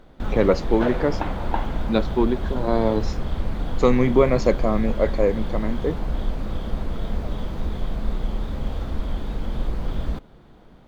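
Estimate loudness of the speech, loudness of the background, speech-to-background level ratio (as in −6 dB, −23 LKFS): −22.5 LKFS, −30.0 LKFS, 7.5 dB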